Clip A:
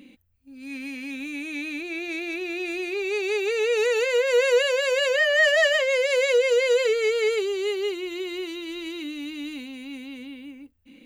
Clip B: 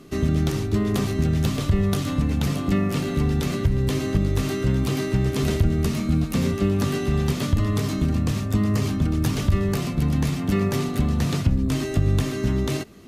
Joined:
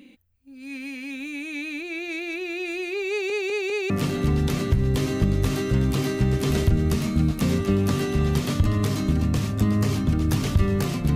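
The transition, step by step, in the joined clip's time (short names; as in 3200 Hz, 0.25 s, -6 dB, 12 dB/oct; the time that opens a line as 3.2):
clip A
3.1 stutter in place 0.20 s, 4 plays
3.9 switch to clip B from 2.83 s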